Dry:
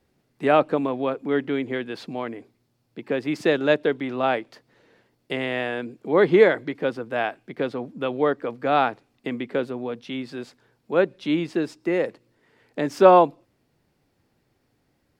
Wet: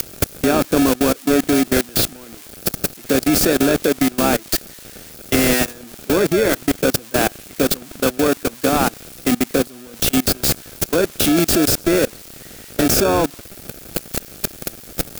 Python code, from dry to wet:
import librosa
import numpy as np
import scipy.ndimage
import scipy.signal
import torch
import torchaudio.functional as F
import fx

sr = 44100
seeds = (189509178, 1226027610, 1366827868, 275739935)

p1 = x + 0.5 * 10.0 ** (-12.5 / 20.0) * np.diff(np.sign(x), prepend=np.sign(x[:1]))
p2 = fx.dynamic_eq(p1, sr, hz=270.0, q=1.4, threshold_db=-35.0, ratio=4.0, max_db=5)
p3 = fx.level_steps(p2, sr, step_db=23)
p4 = fx.sample_hold(p3, sr, seeds[0], rate_hz=1000.0, jitter_pct=0)
p5 = p3 + (p4 * librosa.db_to_amplitude(-3.0))
y = p5 * librosa.db_to_amplitude(6.0)